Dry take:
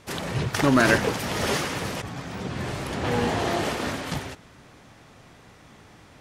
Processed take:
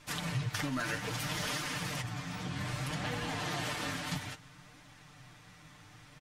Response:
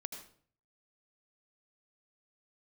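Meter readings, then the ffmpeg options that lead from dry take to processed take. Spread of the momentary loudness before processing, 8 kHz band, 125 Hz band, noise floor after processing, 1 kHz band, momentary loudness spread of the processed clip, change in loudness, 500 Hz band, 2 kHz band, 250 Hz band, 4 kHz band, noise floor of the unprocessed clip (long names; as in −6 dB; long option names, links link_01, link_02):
14 LU, −6.5 dB, −7.5 dB, −57 dBFS, −11.5 dB, 21 LU, −10.5 dB, −16.5 dB, −10.0 dB, −13.5 dB, −6.5 dB, −52 dBFS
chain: -af "equalizer=frequency=440:width_type=o:width=2:gain=-9,bandreject=frequency=410:width=12,aecho=1:1:6.7:0.77,acompressor=threshold=-28dB:ratio=6,flanger=delay=2.8:depth=9.9:regen=56:speed=0.62:shape=triangular"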